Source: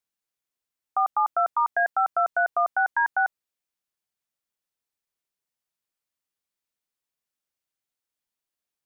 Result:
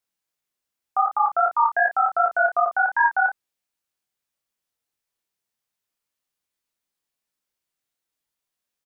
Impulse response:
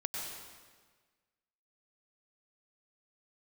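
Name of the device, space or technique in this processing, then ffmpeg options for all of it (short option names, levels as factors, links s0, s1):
double-tracked vocal: -filter_complex "[0:a]asplit=2[s0][s1];[s1]adelay=32,volume=0.447[s2];[s0][s2]amix=inputs=2:normalize=0,flanger=delay=19:depth=4.7:speed=2.6,volume=2"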